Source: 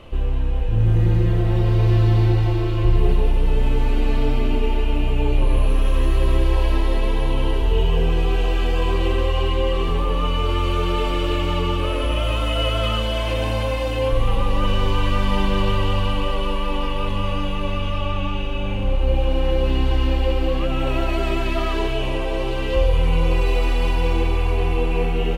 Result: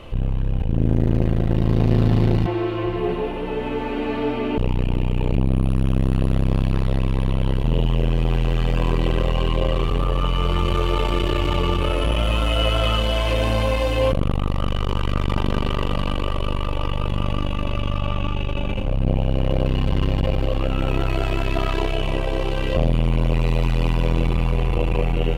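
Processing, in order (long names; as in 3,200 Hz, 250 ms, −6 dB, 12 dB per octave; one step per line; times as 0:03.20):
0:02.46–0:04.58: three-way crossover with the lows and the highs turned down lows −22 dB, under 160 Hz, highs −14 dB, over 3,100 Hz
saturating transformer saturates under 230 Hz
level +3.5 dB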